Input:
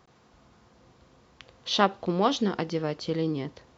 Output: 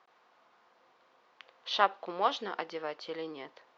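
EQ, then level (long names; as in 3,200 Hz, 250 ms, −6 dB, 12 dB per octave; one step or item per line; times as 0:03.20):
band-pass filter 730–4,400 Hz
high-shelf EQ 3,200 Hz −7.5 dB
0.0 dB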